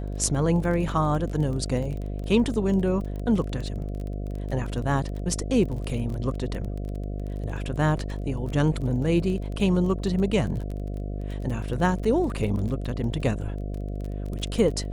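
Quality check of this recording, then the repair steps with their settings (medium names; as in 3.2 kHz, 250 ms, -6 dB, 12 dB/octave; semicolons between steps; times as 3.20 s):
buzz 50 Hz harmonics 14 -31 dBFS
crackle 20 per s -32 dBFS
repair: de-click; de-hum 50 Hz, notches 14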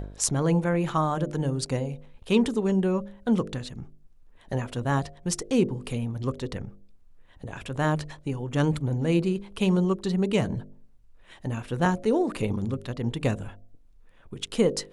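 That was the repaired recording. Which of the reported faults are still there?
nothing left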